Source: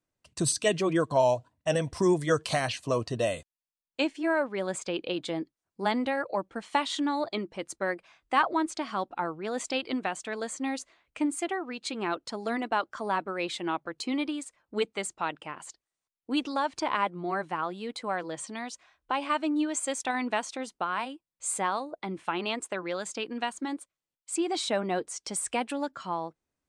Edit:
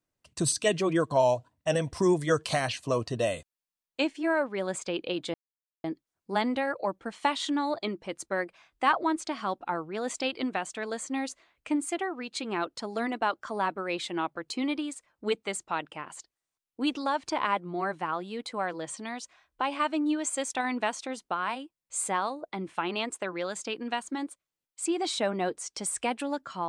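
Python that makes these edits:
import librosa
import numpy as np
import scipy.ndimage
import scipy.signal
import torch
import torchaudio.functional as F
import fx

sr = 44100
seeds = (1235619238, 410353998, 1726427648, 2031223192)

y = fx.edit(x, sr, fx.insert_silence(at_s=5.34, length_s=0.5), tone=tone)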